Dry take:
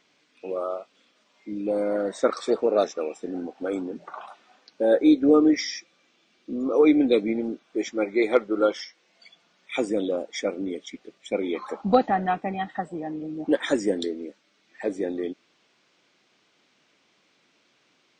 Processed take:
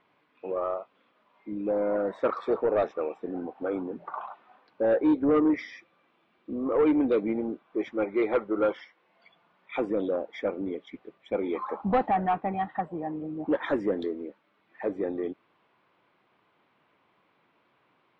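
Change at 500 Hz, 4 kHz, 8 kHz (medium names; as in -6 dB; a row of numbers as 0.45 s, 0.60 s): -3.5 dB, -13.5 dB, under -25 dB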